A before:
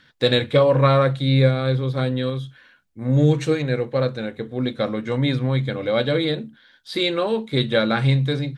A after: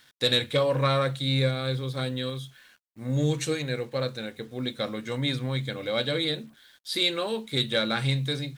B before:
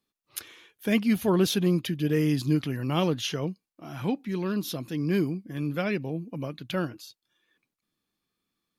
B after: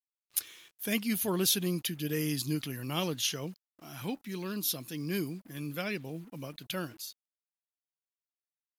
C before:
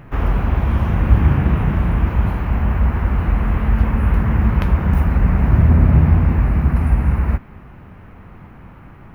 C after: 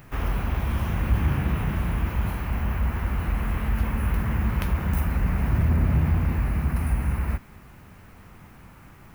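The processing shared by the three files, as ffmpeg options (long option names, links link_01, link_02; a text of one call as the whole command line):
ffmpeg -i in.wav -af "crystalizer=i=4.5:c=0,acrusher=bits=7:mix=0:aa=0.5,asoftclip=type=tanh:threshold=-2dB,volume=-8.5dB" out.wav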